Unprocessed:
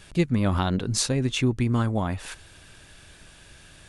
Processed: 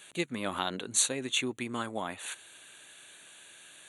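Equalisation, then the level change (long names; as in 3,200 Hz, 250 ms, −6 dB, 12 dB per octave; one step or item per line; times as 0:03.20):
high-pass filter 310 Hz 12 dB per octave
Butterworth band-reject 5,100 Hz, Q 2.6
high-shelf EQ 2,100 Hz +9.5 dB
−6.5 dB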